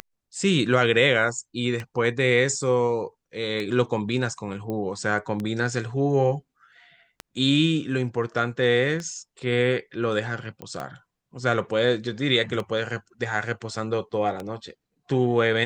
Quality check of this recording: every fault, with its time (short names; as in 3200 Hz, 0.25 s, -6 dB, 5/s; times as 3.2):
tick 33 1/3 rpm -17 dBFS
4.7 pop -20 dBFS
10.62 pop -23 dBFS